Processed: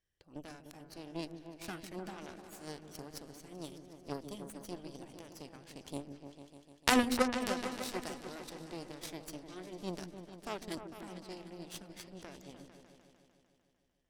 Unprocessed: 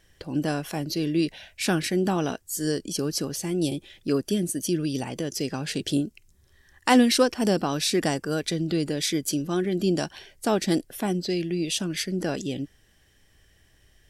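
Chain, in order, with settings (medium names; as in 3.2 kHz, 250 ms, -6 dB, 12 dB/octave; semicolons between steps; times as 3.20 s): Chebyshev shaper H 2 -13 dB, 3 -10 dB, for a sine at -6 dBFS; delay with an opening low-pass 150 ms, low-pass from 400 Hz, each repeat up 2 oct, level -6 dB; trim -1 dB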